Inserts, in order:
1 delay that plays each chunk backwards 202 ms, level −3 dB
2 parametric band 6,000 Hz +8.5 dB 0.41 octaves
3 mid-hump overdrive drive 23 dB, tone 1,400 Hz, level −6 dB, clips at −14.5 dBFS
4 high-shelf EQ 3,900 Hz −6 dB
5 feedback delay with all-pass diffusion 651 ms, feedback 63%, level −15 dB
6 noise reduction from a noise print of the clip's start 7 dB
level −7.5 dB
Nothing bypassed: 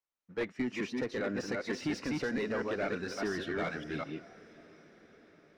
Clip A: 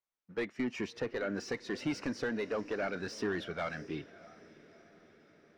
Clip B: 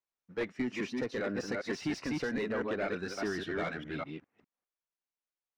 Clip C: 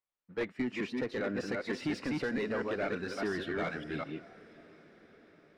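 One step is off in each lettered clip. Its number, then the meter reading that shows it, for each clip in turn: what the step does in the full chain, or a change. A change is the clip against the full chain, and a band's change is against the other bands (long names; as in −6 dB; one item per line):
1, change in momentary loudness spread −2 LU
5, change in momentary loudness spread −3 LU
2, 8 kHz band −5.0 dB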